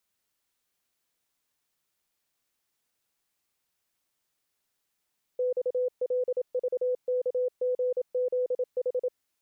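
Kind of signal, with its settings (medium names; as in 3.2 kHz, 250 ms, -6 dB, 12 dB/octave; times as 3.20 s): Morse "XLVKGZH" 27 wpm 501 Hz -24 dBFS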